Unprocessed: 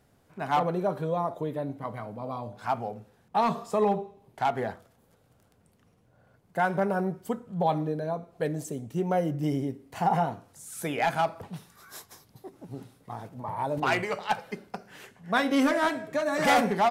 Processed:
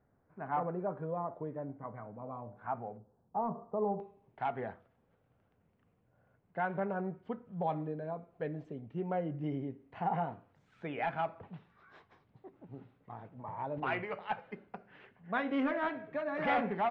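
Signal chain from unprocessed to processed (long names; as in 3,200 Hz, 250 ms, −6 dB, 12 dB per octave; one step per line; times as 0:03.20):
low-pass filter 1,800 Hz 24 dB per octave, from 0:02.97 1,000 Hz, from 0:04.00 2,800 Hz
level −8.5 dB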